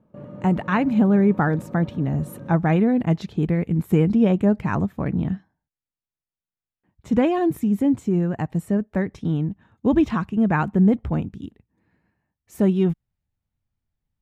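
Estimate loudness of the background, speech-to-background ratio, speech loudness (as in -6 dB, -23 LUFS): -39.5 LUFS, 18.0 dB, -21.5 LUFS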